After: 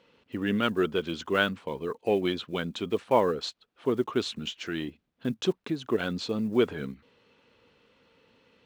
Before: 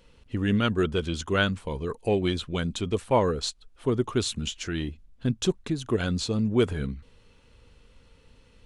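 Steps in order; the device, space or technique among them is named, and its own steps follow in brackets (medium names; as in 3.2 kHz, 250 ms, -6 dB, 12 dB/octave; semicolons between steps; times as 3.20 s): early digital voice recorder (band-pass 220–3900 Hz; block-companded coder 7-bit)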